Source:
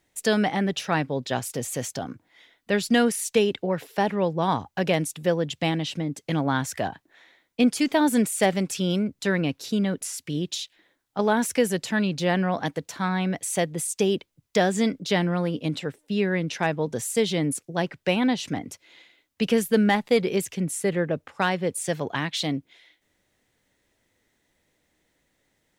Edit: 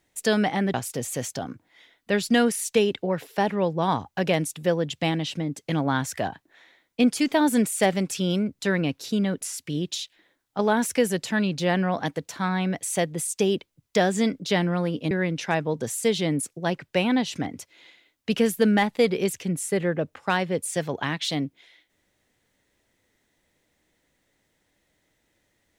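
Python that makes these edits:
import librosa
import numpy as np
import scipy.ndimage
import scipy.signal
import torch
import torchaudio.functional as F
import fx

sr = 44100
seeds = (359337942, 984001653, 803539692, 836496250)

y = fx.edit(x, sr, fx.cut(start_s=0.74, length_s=0.6),
    fx.cut(start_s=15.71, length_s=0.52), tone=tone)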